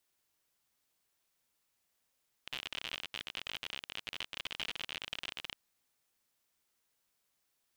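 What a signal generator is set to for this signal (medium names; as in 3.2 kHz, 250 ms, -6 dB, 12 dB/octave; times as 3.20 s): random clicks 58 per s -23.5 dBFS 3.10 s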